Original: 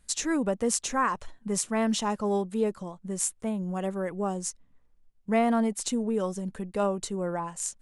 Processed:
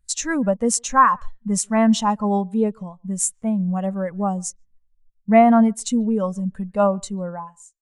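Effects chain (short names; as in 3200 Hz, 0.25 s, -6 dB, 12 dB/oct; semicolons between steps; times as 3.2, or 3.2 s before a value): ending faded out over 0.76 s; bell 360 Hz -10.5 dB 1 oct; speakerphone echo 0.14 s, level -21 dB; spectral expander 1.5:1; gain +6 dB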